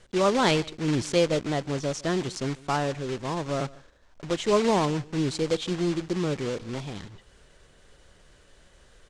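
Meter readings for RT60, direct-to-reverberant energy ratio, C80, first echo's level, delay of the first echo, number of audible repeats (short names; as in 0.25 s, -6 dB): none, none, none, -22.0 dB, 0.148 s, 1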